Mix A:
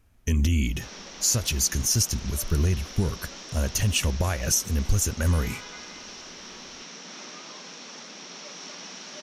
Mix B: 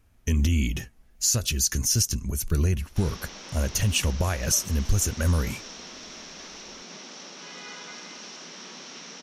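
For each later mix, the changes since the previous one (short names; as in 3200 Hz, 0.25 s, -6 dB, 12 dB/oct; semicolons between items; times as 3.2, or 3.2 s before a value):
background: entry +2.15 s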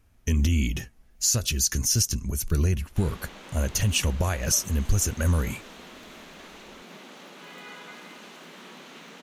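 background: remove synth low-pass 5600 Hz, resonance Q 9.8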